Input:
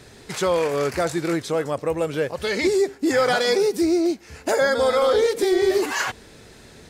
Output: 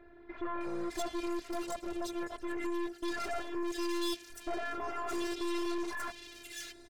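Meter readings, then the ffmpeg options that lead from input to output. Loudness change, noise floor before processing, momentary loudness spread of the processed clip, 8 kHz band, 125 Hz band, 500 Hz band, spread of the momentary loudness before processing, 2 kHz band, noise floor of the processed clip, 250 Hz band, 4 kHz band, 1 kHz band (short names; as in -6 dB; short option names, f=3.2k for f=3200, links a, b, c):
-16.0 dB, -47 dBFS, 7 LU, -13.5 dB, under -20 dB, -20.0 dB, 7 LU, -16.0 dB, -55 dBFS, -12.0 dB, -14.0 dB, -12.5 dB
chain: -filter_complex "[0:a]afftfilt=real='hypot(re,im)*cos(PI*b)':imag='0':win_size=512:overlap=0.75,aeval=exprs='(tanh(50.1*val(0)+0.6)-tanh(0.6))/50.1':c=same,acrossover=split=2200[a][b];[b]adelay=610[c];[a][c]amix=inputs=2:normalize=0"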